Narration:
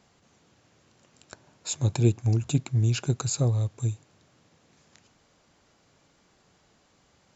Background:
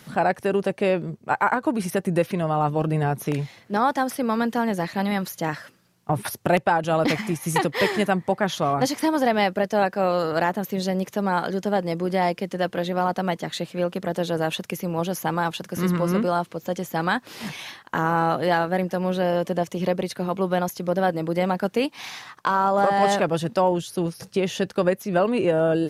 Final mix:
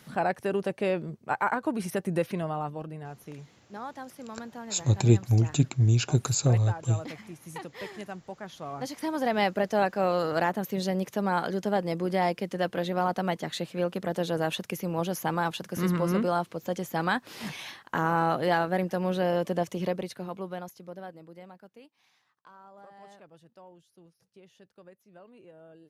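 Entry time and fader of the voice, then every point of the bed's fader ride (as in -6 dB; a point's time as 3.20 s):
3.05 s, +1.5 dB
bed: 2.38 s -6 dB
2.99 s -18 dB
8.52 s -18 dB
9.44 s -4 dB
19.71 s -4 dB
21.96 s -31.5 dB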